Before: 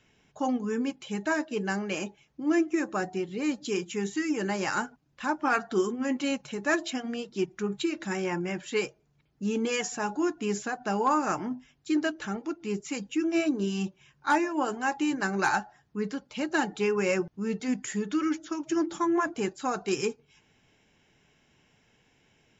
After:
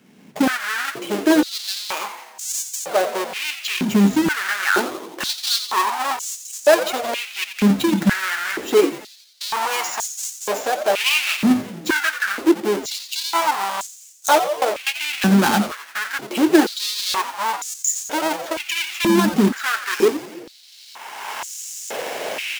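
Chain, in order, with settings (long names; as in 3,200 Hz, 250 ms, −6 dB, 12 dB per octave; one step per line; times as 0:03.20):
each half-wave held at its own peak
camcorder AGC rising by 23 dB per second
0:14.39–0:14.94: noise gate with hold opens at −17 dBFS
on a send: echo with shifted repeats 87 ms, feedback 62%, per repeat −140 Hz, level −10 dB
on the sum: high-pass on a step sequencer 2.1 Hz 210–6,800 Hz
level +2.5 dB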